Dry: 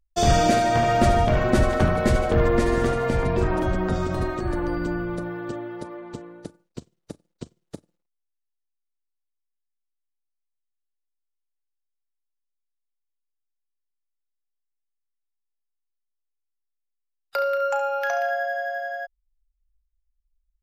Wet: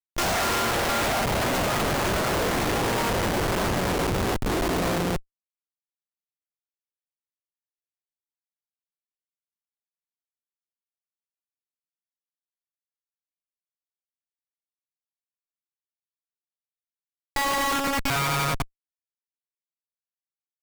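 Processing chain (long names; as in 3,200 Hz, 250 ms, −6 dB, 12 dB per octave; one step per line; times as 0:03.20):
delay that plays each chunk backwards 178 ms, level −6 dB
harmonic generator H 3 −18 dB, 4 −7 dB, 6 −28 dB, 8 −7 dB, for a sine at −4.5 dBFS
comparator with hysteresis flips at −23 dBFS
level −5 dB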